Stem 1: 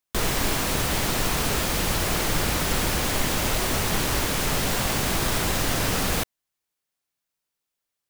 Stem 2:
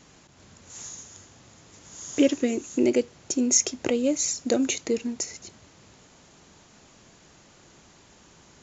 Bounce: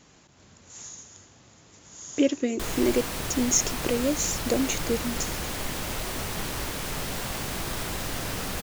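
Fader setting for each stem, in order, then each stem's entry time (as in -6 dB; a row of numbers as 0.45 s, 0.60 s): -7.5 dB, -2.0 dB; 2.45 s, 0.00 s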